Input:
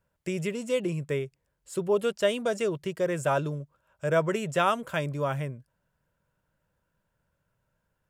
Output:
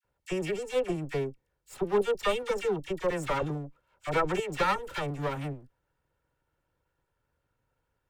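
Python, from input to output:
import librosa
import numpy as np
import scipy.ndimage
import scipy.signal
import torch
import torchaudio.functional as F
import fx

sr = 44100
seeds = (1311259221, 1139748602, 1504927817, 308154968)

y = fx.lower_of_two(x, sr, delay_ms=2.2)
y = fx.high_shelf(y, sr, hz=5000.0, db=-6.0)
y = fx.dispersion(y, sr, late='lows', ms=45.0, hz=1100.0)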